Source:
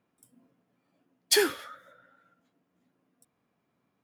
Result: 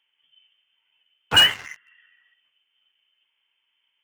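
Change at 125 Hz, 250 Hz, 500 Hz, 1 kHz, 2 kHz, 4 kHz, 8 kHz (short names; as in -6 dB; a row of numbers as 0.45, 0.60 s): n/a, -3.0 dB, -8.0 dB, +10.0 dB, +10.0 dB, +14.5 dB, -2.5 dB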